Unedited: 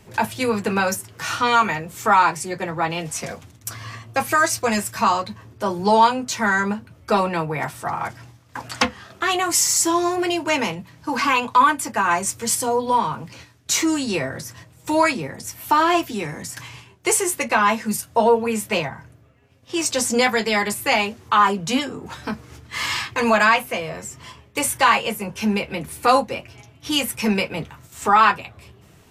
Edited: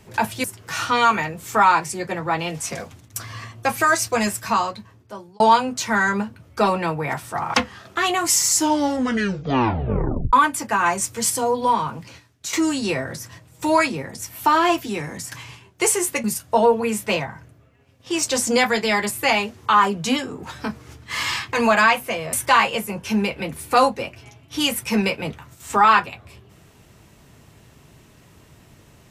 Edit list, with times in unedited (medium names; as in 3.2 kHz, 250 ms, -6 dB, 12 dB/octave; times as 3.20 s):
0.44–0.95 s: delete
4.86–5.91 s: fade out
8.05–8.79 s: delete
9.76 s: tape stop 1.82 s
13.25–13.78 s: fade out, to -11.5 dB
17.49–17.87 s: delete
23.96–24.65 s: delete